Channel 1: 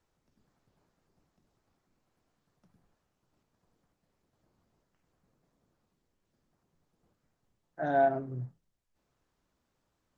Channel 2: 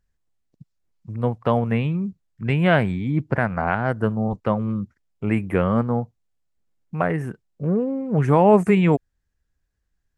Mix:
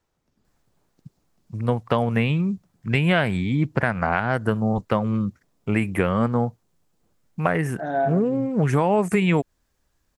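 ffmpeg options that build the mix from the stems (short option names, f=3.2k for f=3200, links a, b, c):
-filter_complex "[0:a]volume=3dB[a];[1:a]highshelf=f=2.3k:g=10.5,adelay=450,volume=2dB[b];[a][b]amix=inputs=2:normalize=0,acompressor=threshold=-16dB:ratio=6"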